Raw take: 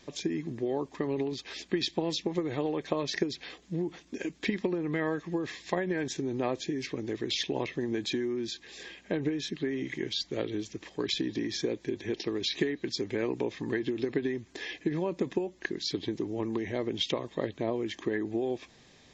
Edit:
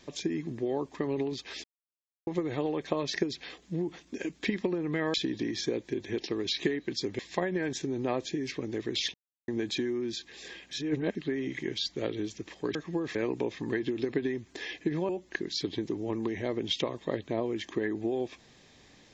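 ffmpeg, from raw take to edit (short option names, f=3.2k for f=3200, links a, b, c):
-filter_complex "[0:a]asplit=12[a][b][c][d][e][f][g][h][i][j][k][l];[a]atrim=end=1.64,asetpts=PTS-STARTPTS,afade=t=out:st=1.636:d=0.004:c=hsin[m];[b]atrim=start=1.64:end=2.27,asetpts=PTS-STARTPTS,volume=0[n];[c]atrim=start=2.27:end=5.142,asetpts=PTS-STARTPTS,afade=t=in:d=0.004:c=hsin[o];[d]atrim=start=11.098:end=13.152[p];[e]atrim=start=5.538:end=7.49,asetpts=PTS-STARTPTS,afade=t=out:st=1.948:d=0.004:c=hsin[q];[f]atrim=start=7.49:end=7.83,asetpts=PTS-STARTPTS,volume=0[r];[g]atrim=start=7.83:end=9.062,asetpts=PTS-STARTPTS,afade=t=in:d=0.004:c=hsin[s];[h]atrim=start=9.058:end=9.502,asetpts=PTS-STARTPTS,areverse[t];[i]atrim=start=9.498:end=11.102[u];[j]atrim=start=5.138:end=5.542[v];[k]atrim=start=13.148:end=15.092[w];[l]atrim=start=15.388[x];[m][n][o]concat=n=3:v=0:a=1[y];[y][p]acrossfade=d=0.004:c1=hsin:c2=hsin[z];[q][r][s]concat=n=3:v=0:a=1[aa];[z][aa]acrossfade=d=0.004:c1=hsin:c2=hsin[ab];[ab][t]acrossfade=d=0.004:c1=hsin:c2=hsin[ac];[ac][u]acrossfade=d=0.004:c1=hsin:c2=hsin[ad];[ad][v]acrossfade=d=0.004:c1=hsin:c2=hsin[ae];[ae][w]acrossfade=d=0.004:c1=hsin:c2=hsin[af];[af][x]acrossfade=d=0.004:c1=hsin:c2=hsin"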